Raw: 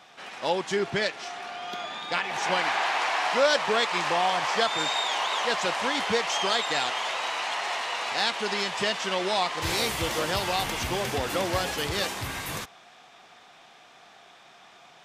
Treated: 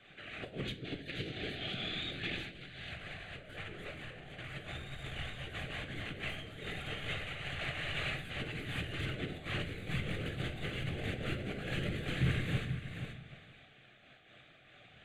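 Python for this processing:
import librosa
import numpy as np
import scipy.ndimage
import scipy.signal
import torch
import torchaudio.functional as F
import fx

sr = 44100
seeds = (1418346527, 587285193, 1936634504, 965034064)

y = fx.tracing_dist(x, sr, depth_ms=0.33)
y = fx.graphic_eq(y, sr, hz=(125, 250, 1000, 4000), db=(-9, 11, -6, 11), at=(0.65, 2.92))
y = 10.0 ** (-17.5 / 20.0) * np.tanh(y / 10.0 ** (-17.5 / 20.0))
y = fx.whisperise(y, sr, seeds[0])
y = fx.echo_feedback(y, sr, ms=477, feedback_pct=15, wet_db=-9.0)
y = fx.over_compress(y, sr, threshold_db=-31.0, ratio=-0.5)
y = scipy.signal.sosfilt(scipy.signal.butter(2, 5600.0, 'lowpass', fs=sr, output='sos'), y)
y = fx.peak_eq(y, sr, hz=120.0, db=10.0, octaves=1.2)
y = fx.fixed_phaser(y, sr, hz=2300.0, stages=4)
y = fx.room_shoebox(y, sr, seeds[1], volume_m3=140.0, walls='mixed', distance_m=0.44)
y = fx.am_noise(y, sr, seeds[2], hz=5.7, depth_pct=65)
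y = y * librosa.db_to_amplitude(-5.0)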